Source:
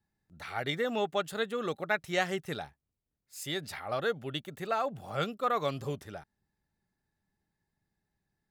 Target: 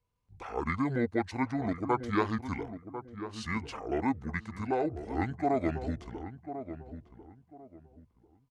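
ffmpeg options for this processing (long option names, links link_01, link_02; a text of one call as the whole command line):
ffmpeg -i in.wav -filter_complex "[0:a]highshelf=frequency=9800:gain=-6,asetrate=25476,aresample=44100,atempo=1.73107,asplit=2[link_01][link_02];[link_02]adelay=1045,lowpass=frequency=990:poles=1,volume=-10dB,asplit=2[link_03][link_04];[link_04]adelay=1045,lowpass=frequency=990:poles=1,volume=0.28,asplit=2[link_05][link_06];[link_06]adelay=1045,lowpass=frequency=990:poles=1,volume=0.28[link_07];[link_03][link_05][link_07]amix=inputs=3:normalize=0[link_08];[link_01][link_08]amix=inputs=2:normalize=0,volume=1.5dB" out.wav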